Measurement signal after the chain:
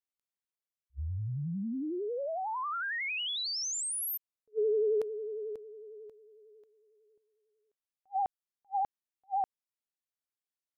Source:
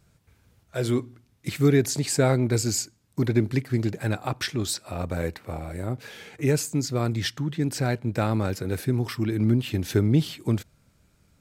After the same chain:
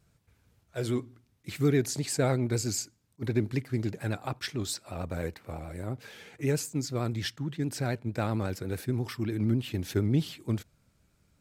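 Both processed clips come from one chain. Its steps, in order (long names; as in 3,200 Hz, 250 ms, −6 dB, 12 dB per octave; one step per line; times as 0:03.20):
pitch vibrato 11 Hz 63 cents
level that may rise only so fast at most 590 dB per second
level −5.5 dB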